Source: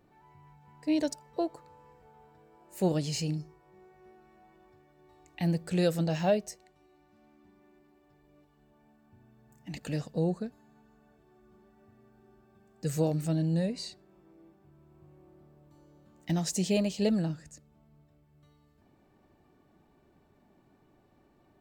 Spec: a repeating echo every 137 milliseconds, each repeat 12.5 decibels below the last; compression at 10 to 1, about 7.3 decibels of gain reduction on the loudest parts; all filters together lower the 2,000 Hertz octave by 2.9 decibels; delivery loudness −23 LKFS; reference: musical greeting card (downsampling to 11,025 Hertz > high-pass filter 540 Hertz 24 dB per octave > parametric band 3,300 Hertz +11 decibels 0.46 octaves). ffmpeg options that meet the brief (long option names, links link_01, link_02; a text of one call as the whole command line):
ffmpeg -i in.wav -af "equalizer=frequency=2000:width_type=o:gain=-7.5,acompressor=threshold=-29dB:ratio=10,aecho=1:1:137|274|411:0.237|0.0569|0.0137,aresample=11025,aresample=44100,highpass=frequency=540:width=0.5412,highpass=frequency=540:width=1.3066,equalizer=frequency=3300:width_type=o:width=0.46:gain=11,volume=20dB" out.wav